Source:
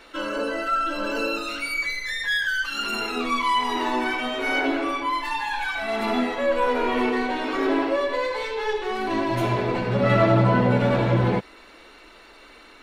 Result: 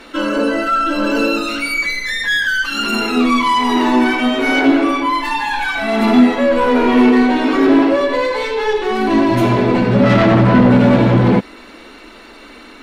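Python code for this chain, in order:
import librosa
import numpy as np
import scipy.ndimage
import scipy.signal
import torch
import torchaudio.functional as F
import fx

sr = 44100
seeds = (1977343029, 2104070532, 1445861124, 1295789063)

y = fx.fold_sine(x, sr, drive_db=7, ceiling_db=-7.0)
y = fx.peak_eq(y, sr, hz=240.0, db=9.5, octaves=0.83)
y = y * librosa.db_to_amplitude(-2.5)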